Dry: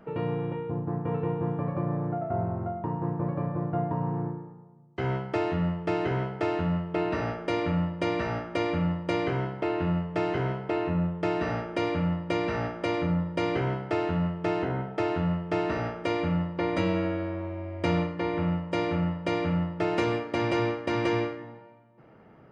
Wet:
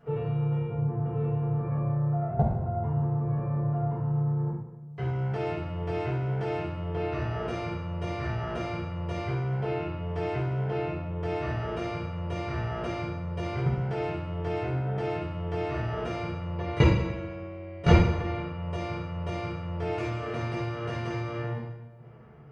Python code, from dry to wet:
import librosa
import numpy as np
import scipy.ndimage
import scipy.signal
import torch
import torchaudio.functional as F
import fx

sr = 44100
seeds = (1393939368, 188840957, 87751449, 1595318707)

y = fx.low_shelf_res(x, sr, hz=150.0, db=6.5, q=1.5)
y = fx.level_steps(y, sr, step_db=22)
y = fx.rev_fdn(y, sr, rt60_s=1.0, lf_ratio=1.05, hf_ratio=0.9, size_ms=41.0, drr_db=-9.0)
y = F.gain(torch.from_numpy(y), 4.0).numpy()